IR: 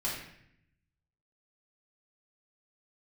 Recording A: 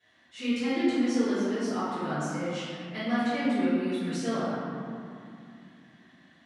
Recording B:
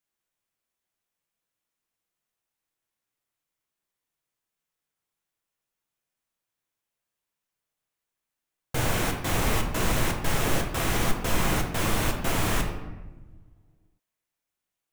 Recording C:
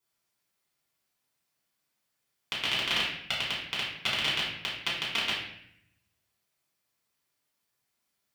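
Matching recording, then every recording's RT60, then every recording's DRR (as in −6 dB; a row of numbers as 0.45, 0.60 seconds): C; 2.5, 1.2, 0.70 seconds; −17.0, 2.5, −7.5 decibels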